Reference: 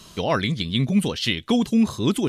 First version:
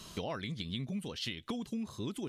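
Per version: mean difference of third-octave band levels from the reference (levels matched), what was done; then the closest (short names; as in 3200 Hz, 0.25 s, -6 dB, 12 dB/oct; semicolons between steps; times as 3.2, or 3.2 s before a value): 3.0 dB: compressor 10:1, threshold -31 dBFS, peak gain reduction 17 dB; gain -4 dB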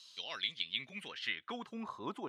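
7.5 dB: band-pass sweep 4300 Hz -> 940 Hz, 0.07–2.01; gain -5 dB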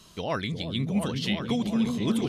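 4.5 dB: repeats that get brighter 0.354 s, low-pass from 400 Hz, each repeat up 2 oct, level -3 dB; gain -7.5 dB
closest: first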